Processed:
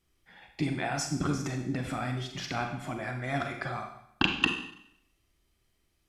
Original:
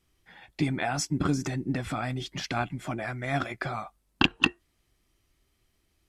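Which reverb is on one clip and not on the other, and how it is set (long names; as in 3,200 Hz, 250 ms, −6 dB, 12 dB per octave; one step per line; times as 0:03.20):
four-comb reverb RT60 0.74 s, combs from 32 ms, DRR 4 dB
level −3.5 dB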